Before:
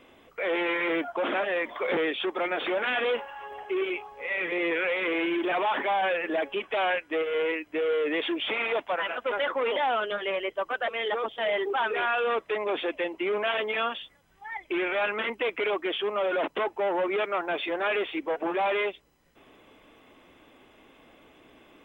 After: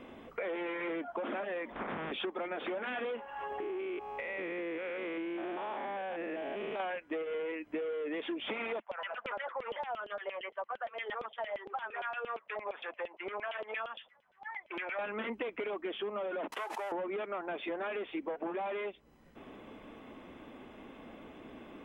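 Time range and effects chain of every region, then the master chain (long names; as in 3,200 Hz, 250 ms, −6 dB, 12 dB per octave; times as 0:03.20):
0:01.71–0:02.11: ceiling on every frequency bin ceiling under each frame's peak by 28 dB + low-pass filter 1,700 Hz + downward compressor, threshold −33 dBFS
0:03.60–0:06.80: spectrum averaged block by block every 200 ms + downward compressor, threshold −33 dBFS
0:08.80–0:14.99: parametric band 280 Hz −10.5 dB 0.78 octaves + auto-filter band-pass saw down 8.7 Hz 530–3,300 Hz
0:16.52–0:16.92: variable-slope delta modulation 64 kbit/s + high-pass filter 970 Hz + background raised ahead of every attack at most 29 dB per second
whole clip: high-shelf EQ 2,700 Hz −11.5 dB; downward compressor 6 to 1, threshold −41 dBFS; parametric band 220 Hz +7 dB 0.43 octaves; level +5 dB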